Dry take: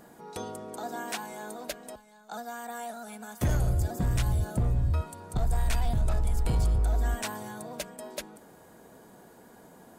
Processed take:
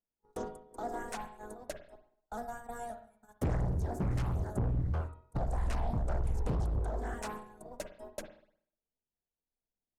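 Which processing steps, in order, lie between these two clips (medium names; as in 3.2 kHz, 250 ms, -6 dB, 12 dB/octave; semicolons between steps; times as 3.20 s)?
bass shelf 110 Hz -9 dB; low-pass that closes with the level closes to 2 kHz, closed at -21.5 dBFS; reverb removal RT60 0.83 s; added noise brown -53 dBFS; saturation -25 dBFS, distortion -21 dB; gate -41 dBFS, range -48 dB; peaking EQ 3.4 kHz -13.5 dB 2.2 oct; reverberation, pre-delay 49 ms, DRR 7.5 dB; loudspeaker Doppler distortion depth 0.9 ms; trim +2 dB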